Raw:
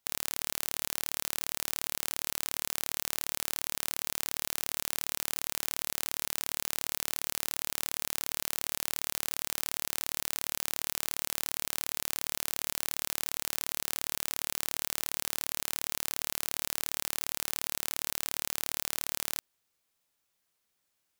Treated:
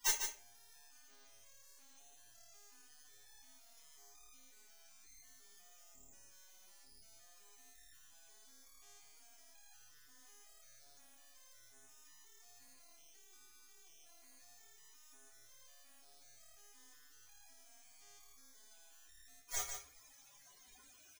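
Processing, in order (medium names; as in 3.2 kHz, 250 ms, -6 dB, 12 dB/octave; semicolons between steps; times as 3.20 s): chunks repeated in reverse 180 ms, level -9.5 dB; loudest bins only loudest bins 64; inverted gate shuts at -28 dBFS, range -40 dB; graphic EQ with 31 bands 100 Hz -3 dB, 160 Hz -11 dB, 500 Hz -5 dB, 6.3 kHz +10 dB, 16 kHz -11 dB; delay 148 ms -7 dB; reverberation RT60 0.40 s, pre-delay 3 ms, DRR -5.5 dB; trim +16.5 dB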